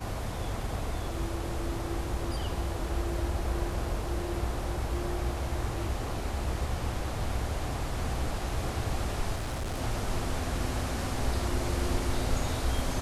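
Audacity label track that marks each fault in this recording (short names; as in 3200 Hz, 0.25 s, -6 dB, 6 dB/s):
9.350000	9.820000	clipped -29.5 dBFS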